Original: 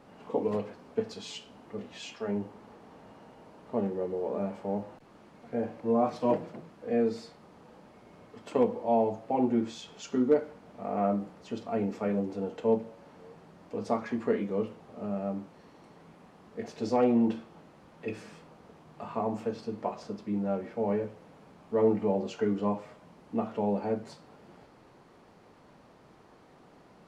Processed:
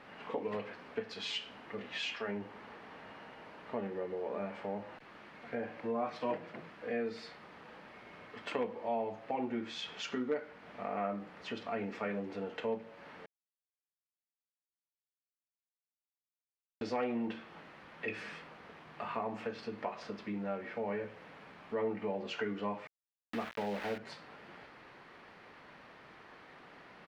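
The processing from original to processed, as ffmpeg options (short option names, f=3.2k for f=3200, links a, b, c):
-filter_complex "[0:a]asettb=1/sr,asplit=3[a][b][c];[a]atrim=end=22.874[d];[b]atrim=start=22.87:end=23.98,asetpts=PTS-STARTPTS,afade=t=in:d=0.004:c=qsin,afade=t=out:st=1.106:d=0.004:c=qsin,aeval=exprs='val(0)*gte(abs(val(0)),0.0126)':c=same[e];[c]atrim=start=23.976[f];[d][e]acrossfade=d=0.004:c1=hsin:c2=qsin[g];[g][f]acrossfade=d=0.004:c1=qsin:c2=hsin,asplit=3[h][i][j];[h]atrim=end=13.26,asetpts=PTS-STARTPTS,afade=t=out:st=13.256:d=0.004:c=hsin[k];[i]atrim=start=13.26:end=16.81,asetpts=PTS-STARTPTS,volume=0[l];[j]atrim=start=16.81,asetpts=PTS-STARTPTS,afade=t=in:d=0.004:c=hsin[m];[k][l][m]concat=n=3:v=0:a=1,lowshelf=f=470:g=-8,acompressor=threshold=-42dB:ratio=2,firequalizer=gain_entry='entry(840,0);entry(1800,9);entry(7100,-9)':delay=0.05:min_phase=1,volume=3dB"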